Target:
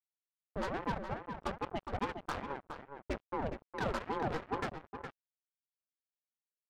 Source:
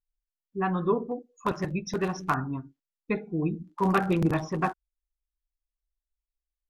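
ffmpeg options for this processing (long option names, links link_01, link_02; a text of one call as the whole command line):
ffmpeg -i in.wav -filter_complex "[0:a]lowpass=frequency=2500:width=0.5412,lowpass=frequency=2500:width=1.3066,equalizer=frequency=570:width=0.8:gain=2,alimiter=limit=-14.5dB:level=0:latency=1:release=456,acompressor=threshold=-42dB:ratio=2,asoftclip=type=tanh:threshold=-31.5dB,acrusher=bits=5:mix=0:aa=0.5,asplit=2[link_01][link_02];[link_02]adelay=414,volume=-7dB,highshelf=frequency=4000:gain=-9.32[link_03];[link_01][link_03]amix=inputs=2:normalize=0,aeval=exprs='val(0)*sin(2*PI*430*n/s+430*0.65/2.4*sin(2*PI*2.4*n/s))':channel_layout=same,volume=4dB" out.wav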